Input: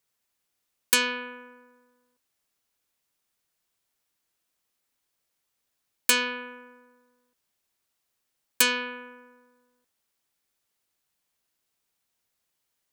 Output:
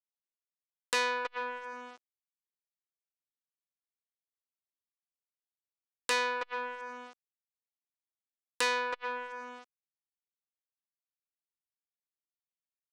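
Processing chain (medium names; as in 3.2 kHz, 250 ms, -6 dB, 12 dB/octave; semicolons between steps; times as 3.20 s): resonant low shelf 340 Hz -13 dB, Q 1.5; band-stop 420 Hz, Q 12; doubling 15 ms -8 dB; small samples zeroed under -47 dBFS; speakerphone echo 320 ms, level -7 dB; low-pass that closes with the level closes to 2.2 kHz, closed at -31 dBFS; high-order bell 2.8 kHz -8 dB; upward compressor, threshold -32 dBFS; low-pass 9.8 kHz 24 dB/octave; transformer saturation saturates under 3.8 kHz; trim +4.5 dB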